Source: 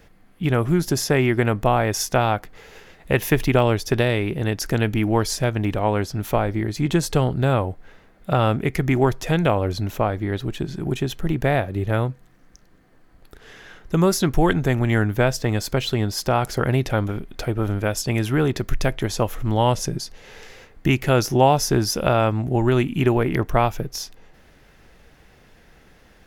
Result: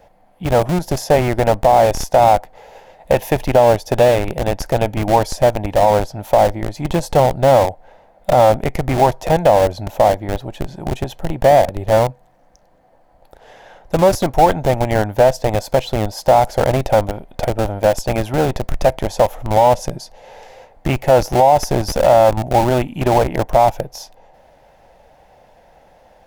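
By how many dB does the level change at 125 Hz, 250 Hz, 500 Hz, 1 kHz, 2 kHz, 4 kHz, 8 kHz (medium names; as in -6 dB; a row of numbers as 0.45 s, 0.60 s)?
0.0 dB, -0.5 dB, +9.0 dB, +9.5 dB, 0.0 dB, +0.5 dB, -0.5 dB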